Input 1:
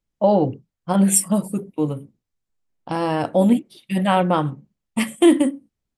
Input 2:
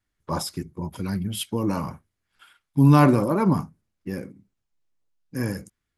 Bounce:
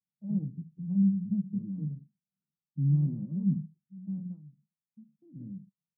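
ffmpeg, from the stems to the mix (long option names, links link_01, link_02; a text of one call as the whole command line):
ffmpeg -i stem1.wav -i stem2.wav -filter_complex "[0:a]volume=-6dB,afade=type=out:start_time=2.93:duration=0.5:silence=0.298538[link_01];[1:a]volume=-5.5dB,asplit=2[link_02][link_03];[link_03]apad=whole_len=263283[link_04];[link_01][link_04]sidechaingate=range=-7dB:threshold=-50dB:ratio=16:detection=peak[link_05];[link_05][link_02]amix=inputs=2:normalize=0,asuperpass=centerf=170:order=4:qfactor=2.7" out.wav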